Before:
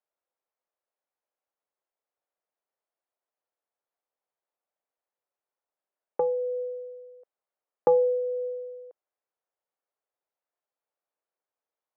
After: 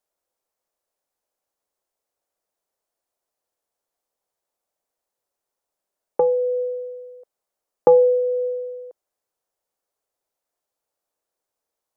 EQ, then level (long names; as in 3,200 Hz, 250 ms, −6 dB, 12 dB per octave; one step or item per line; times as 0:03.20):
bass and treble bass −5 dB, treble +14 dB
spectral tilt −2.5 dB per octave
+5.5 dB